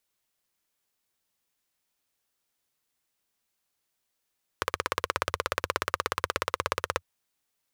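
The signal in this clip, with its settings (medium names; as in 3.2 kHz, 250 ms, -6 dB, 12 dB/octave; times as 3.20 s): single-cylinder engine model, steady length 2.40 s, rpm 2000, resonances 87/510/1100 Hz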